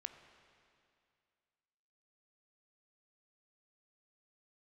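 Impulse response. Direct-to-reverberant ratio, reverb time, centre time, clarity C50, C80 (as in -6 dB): 8.0 dB, 2.4 s, 26 ms, 9.0 dB, 10.0 dB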